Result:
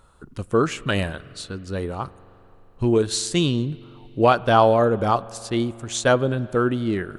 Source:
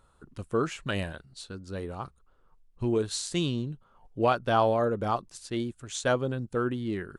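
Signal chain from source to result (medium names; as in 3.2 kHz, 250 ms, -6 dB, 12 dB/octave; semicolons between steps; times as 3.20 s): spring tank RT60 3.4 s, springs 43 ms, chirp 40 ms, DRR 19.5 dB; trim +8 dB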